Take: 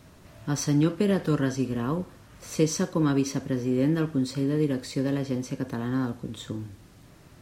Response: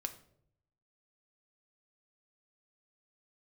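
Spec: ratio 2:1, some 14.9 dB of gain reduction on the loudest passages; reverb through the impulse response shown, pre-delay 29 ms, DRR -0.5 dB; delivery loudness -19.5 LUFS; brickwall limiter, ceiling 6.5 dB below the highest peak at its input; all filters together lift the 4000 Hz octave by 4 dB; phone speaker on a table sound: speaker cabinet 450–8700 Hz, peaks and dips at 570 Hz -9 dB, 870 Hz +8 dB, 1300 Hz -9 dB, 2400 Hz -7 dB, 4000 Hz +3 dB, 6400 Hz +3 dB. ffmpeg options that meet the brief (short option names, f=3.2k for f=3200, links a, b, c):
-filter_complex "[0:a]equalizer=f=4k:t=o:g=3.5,acompressor=threshold=-46dB:ratio=2,alimiter=level_in=8dB:limit=-24dB:level=0:latency=1,volume=-8dB,asplit=2[a][b];[1:a]atrim=start_sample=2205,adelay=29[c];[b][c]afir=irnorm=-1:irlink=0,volume=1.5dB[d];[a][d]amix=inputs=2:normalize=0,highpass=f=450:w=0.5412,highpass=f=450:w=1.3066,equalizer=f=570:t=q:w=4:g=-9,equalizer=f=870:t=q:w=4:g=8,equalizer=f=1.3k:t=q:w=4:g=-9,equalizer=f=2.4k:t=q:w=4:g=-7,equalizer=f=4k:t=q:w=4:g=3,equalizer=f=6.4k:t=q:w=4:g=3,lowpass=f=8.7k:w=0.5412,lowpass=f=8.7k:w=1.3066,volume=25.5dB"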